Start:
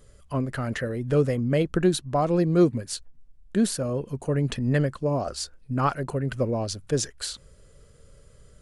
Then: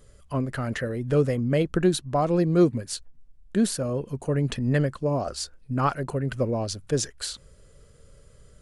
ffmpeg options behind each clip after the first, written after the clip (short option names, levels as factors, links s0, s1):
-af anull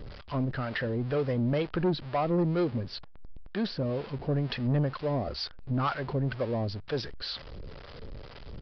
-filter_complex "[0:a]aeval=exprs='val(0)+0.5*0.0188*sgn(val(0))':c=same,acrossover=split=510[s0][s1];[s0]aeval=exprs='val(0)*(1-0.7/2+0.7/2*cos(2*PI*2.1*n/s))':c=same[s2];[s1]aeval=exprs='val(0)*(1-0.7/2-0.7/2*cos(2*PI*2.1*n/s))':c=same[s3];[s2][s3]amix=inputs=2:normalize=0,aresample=11025,asoftclip=type=tanh:threshold=0.0891,aresample=44100"